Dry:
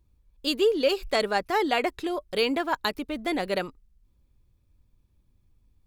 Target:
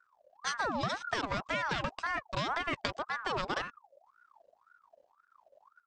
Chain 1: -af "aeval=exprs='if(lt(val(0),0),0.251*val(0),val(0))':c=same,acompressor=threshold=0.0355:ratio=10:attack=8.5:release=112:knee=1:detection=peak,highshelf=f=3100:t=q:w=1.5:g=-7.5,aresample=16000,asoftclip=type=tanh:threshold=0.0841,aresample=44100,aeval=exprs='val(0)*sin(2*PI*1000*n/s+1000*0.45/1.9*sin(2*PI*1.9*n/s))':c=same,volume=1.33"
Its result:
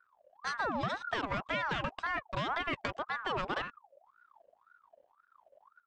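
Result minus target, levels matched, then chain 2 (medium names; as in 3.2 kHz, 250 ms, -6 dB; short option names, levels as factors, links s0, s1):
saturation: distortion +16 dB; 8 kHz band -9.0 dB
-af "aeval=exprs='if(lt(val(0),0),0.251*val(0),val(0))':c=same,acompressor=threshold=0.0355:ratio=10:attack=8.5:release=112:knee=1:detection=peak,aresample=16000,asoftclip=type=tanh:threshold=0.266,aresample=44100,aeval=exprs='val(0)*sin(2*PI*1000*n/s+1000*0.45/1.9*sin(2*PI*1.9*n/s))':c=same,volume=1.33"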